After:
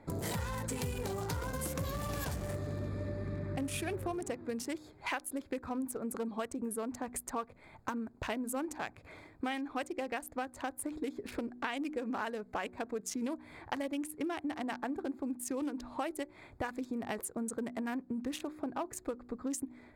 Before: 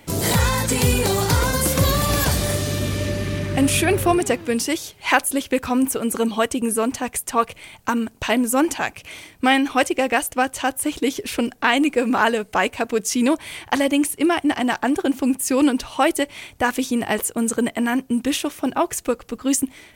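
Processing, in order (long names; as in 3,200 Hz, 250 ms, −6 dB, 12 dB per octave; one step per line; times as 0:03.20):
adaptive Wiener filter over 15 samples
hum removal 61.12 Hz, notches 6
downward compressor 4 to 1, threshold −30 dBFS, peak gain reduction 16 dB
level −6 dB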